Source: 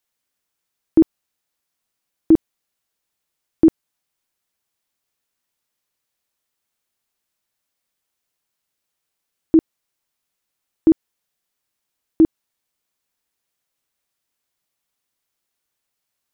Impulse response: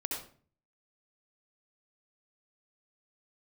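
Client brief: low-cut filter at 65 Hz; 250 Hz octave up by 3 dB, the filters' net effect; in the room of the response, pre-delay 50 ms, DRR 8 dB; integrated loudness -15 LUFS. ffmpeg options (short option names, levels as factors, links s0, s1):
-filter_complex "[0:a]highpass=65,equalizer=f=250:t=o:g=4.5,asplit=2[s0][s1];[1:a]atrim=start_sample=2205,adelay=50[s2];[s1][s2]afir=irnorm=-1:irlink=0,volume=0.299[s3];[s0][s3]amix=inputs=2:normalize=0,volume=1.12"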